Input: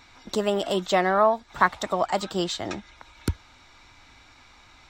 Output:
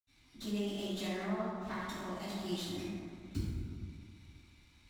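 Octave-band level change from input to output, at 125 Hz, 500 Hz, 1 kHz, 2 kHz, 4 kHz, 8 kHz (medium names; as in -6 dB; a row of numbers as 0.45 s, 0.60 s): -6.0 dB, -17.0 dB, -20.5 dB, -17.0 dB, -11.5 dB, -12.0 dB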